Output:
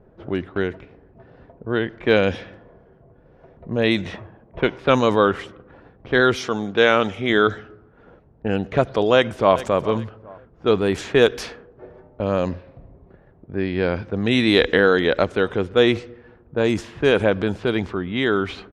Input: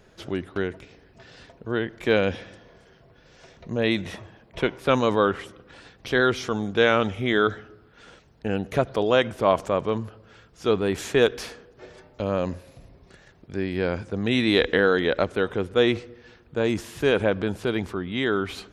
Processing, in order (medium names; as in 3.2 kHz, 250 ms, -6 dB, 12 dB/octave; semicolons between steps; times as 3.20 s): 9.14–9.59 s: echo throw 410 ms, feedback 35%, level -16 dB; 12.49–14.08 s: Savitzky-Golay filter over 15 samples; level-controlled noise filter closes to 760 Hz, open at -19.5 dBFS; 6.36–7.30 s: high-pass 190 Hz 6 dB/octave; trim +4 dB